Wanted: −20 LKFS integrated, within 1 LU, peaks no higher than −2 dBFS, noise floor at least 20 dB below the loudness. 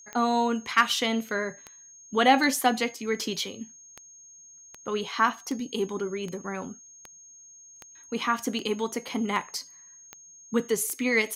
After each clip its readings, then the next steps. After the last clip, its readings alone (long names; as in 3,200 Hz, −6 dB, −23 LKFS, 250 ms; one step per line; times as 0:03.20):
number of clicks 15; interfering tone 6,500 Hz; level of the tone −48 dBFS; integrated loudness −27.0 LKFS; sample peak −7.5 dBFS; target loudness −20.0 LKFS
→ click removal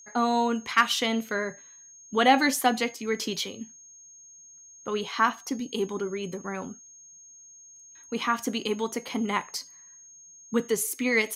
number of clicks 0; interfering tone 6,500 Hz; level of the tone −48 dBFS
→ notch filter 6,500 Hz, Q 30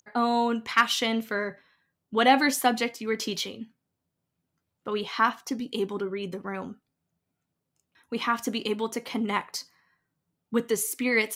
interfering tone none found; integrated loudness −27.5 LKFS; sample peak −7.5 dBFS; target loudness −20.0 LKFS
→ level +7.5 dB
brickwall limiter −2 dBFS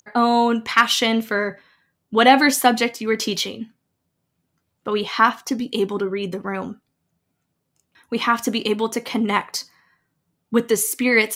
integrated loudness −20.0 LKFS; sample peak −2.0 dBFS; background noise floor −75 dBFS